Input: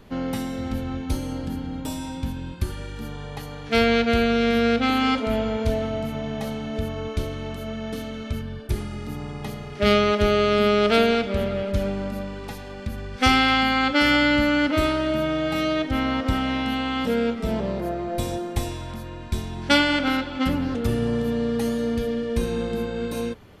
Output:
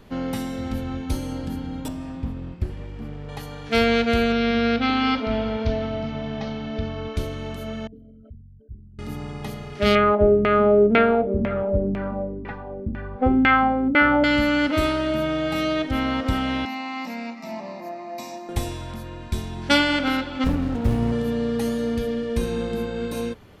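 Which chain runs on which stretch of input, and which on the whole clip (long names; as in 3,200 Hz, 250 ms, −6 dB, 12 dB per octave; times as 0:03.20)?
0:01.88–0:03.29: lower of the sound and its delayed copy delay 0.38 ms + low-pass filter 1,100 Hz 6 dB per octave
0:04.32–0:07.16: Butterworth low-pass 5,700 Hz 48 dB per octave + parametric band 510 Hz −4.5 dB 0.3 octaves
0:07.87–0:08.99: spectral envelope exaggerated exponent 3 + first-order pre-emphasis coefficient 0.8
0:09.95–0:14.24: low-pass filter 5,000 Hz + auto-filter low-pass saw down 2 Hz 240–2,200 Hz
0:16.65–0:18.49: high-pass filter 250 Hz 24 dB per octave + phaser with its sweep stopped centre 2,200 Hz, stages 8
0:20.44–0:21.12: low-shelf EQ 76 Hz +9.5 dB + windowed peak hold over 33 samples
whole clip: no processing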